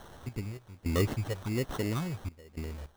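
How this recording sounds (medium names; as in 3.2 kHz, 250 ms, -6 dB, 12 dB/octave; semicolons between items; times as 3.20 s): a quantiser's noise floor 8-bit, dither triangular; random-step tremolo 3.5 Hz, depth 90%; phasing stages 4, 1.3 Hz, lowest notch 260–2700 Hz; aliases and images of a low sample rate 2.4 kHz, jitter 0%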